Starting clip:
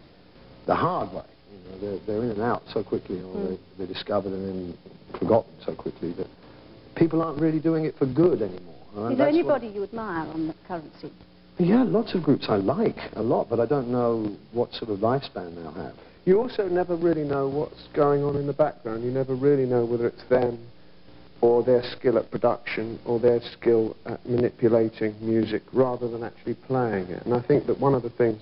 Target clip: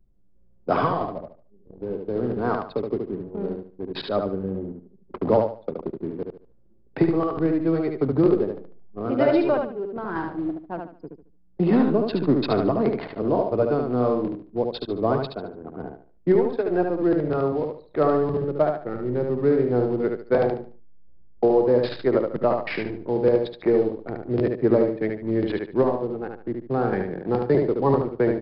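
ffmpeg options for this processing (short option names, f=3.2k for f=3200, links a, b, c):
-filter_complex "[0:a]anlmdn=10,asplit=2[a][b];[b]aecho=0:1:73|146|219|292:0.596|0.167|0.0467|0.0131[c];[a][c]amix=inputs=2:normalize=0"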